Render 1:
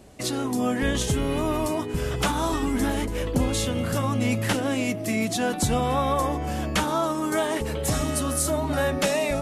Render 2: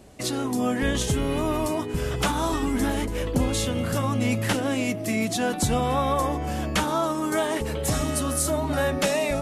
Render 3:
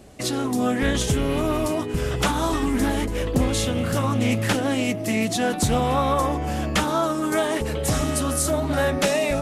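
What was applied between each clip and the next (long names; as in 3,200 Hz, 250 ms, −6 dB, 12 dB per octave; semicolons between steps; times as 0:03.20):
no processing that can be heard
notch filter 940 Hz, Q 20; highs frequency-modulated by the lows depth 0.23 ms; level +2.5 dB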